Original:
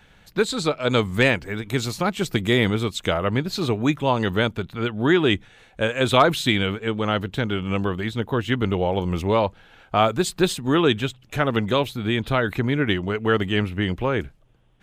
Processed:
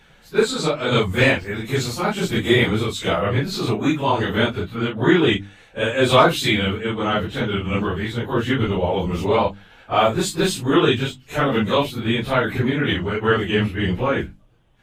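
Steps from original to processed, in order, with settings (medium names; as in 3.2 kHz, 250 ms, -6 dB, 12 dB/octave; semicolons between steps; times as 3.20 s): phase randomisation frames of 100 ms; hum notches 50/100/150/200/250/300 Hz; trim +2.5 dB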